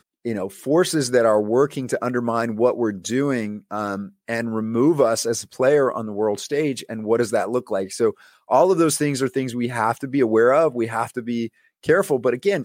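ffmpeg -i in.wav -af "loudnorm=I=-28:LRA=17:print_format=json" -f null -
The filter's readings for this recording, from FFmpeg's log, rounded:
"input_i" : "-21.0",
"input_tp" : "-3.6",
"input_lra" : "0.9",
"input_thresh" : "-31.1",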